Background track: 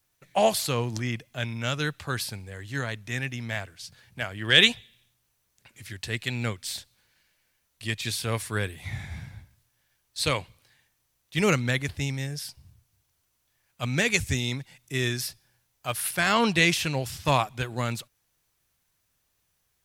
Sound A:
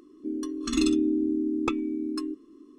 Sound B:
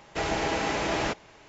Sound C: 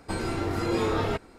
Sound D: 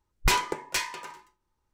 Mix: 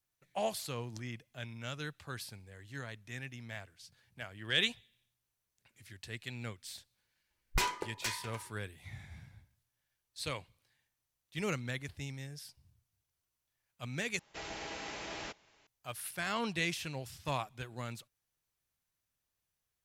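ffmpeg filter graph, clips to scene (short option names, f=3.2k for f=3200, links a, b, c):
-filter_complex "[0:a]volume=-13dB[a];[2:a]equalizer=f=4.7k:w=0.37:g=8[b];[a]asplit=2[c][d];[c]atrim=end=14.194[e];[b]atrim=end=1.48,asetpts=PTS-STARTPTS,volume=-18dB[f];[d]atrim=start=15.666[g];[4:a]atrim=end=1.73,asetpts=PTS-STARTPTS,volume=-8.5dB,afade=t=in:d=0.004:c=hsin,afade=t=out:st=1.726:d=0.004:c=hsin,adelay=321930S[h];[e][f]acrossfade=d=0.004:c1=hsin:c2=hsin[i];[i][g]acrossfade=d=0.004:c1=hsin:c2=hsin[j];[j][h]amix=inputs=2:normalize=0"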